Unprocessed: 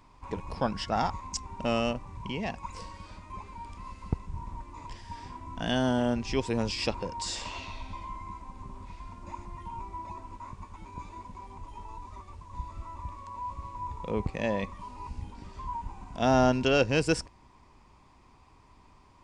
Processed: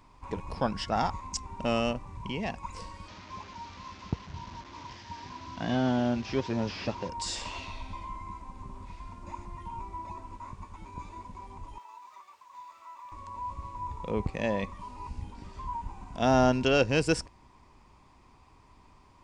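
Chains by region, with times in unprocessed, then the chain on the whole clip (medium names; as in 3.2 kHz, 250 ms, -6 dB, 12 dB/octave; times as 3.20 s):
3.08–7.09 s: one-bit delta coder 32 kbps, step -42 dBFS + high-pass 87 Hz + band-stop 470 Hz, Q 13
11.78–13.12 s: high-pass 950 Hz + decimation joined by straight lines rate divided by 2×
whole clip: none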